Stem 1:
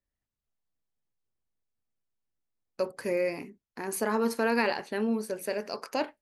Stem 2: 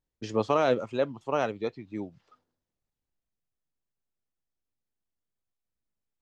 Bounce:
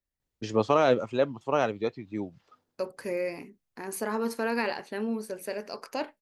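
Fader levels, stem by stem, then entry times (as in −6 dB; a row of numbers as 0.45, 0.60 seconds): −2.5, +2.0 decibels; 0.00, 0.20 seconds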